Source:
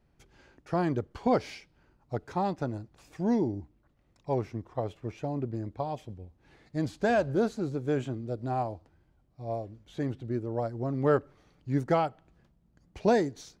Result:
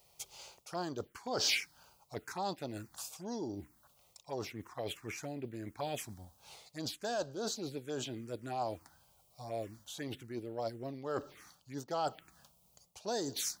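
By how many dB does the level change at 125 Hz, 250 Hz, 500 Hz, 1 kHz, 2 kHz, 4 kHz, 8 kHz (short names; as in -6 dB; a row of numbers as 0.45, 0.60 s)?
-14.0 dB, -12.0 dB, -10.0 dB, -8.0 dB, -4.0 dB, +9.5 dB, n/a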